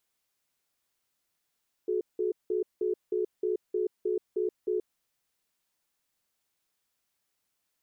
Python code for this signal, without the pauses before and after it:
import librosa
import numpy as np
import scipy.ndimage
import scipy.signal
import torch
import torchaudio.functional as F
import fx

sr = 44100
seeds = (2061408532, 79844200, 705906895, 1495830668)

y = fx.cadence(sr, length_s=3.07, low_hz=366.0, high_hz=427.0, on_s=0.13, off_s=0.18, level_db=-28.5)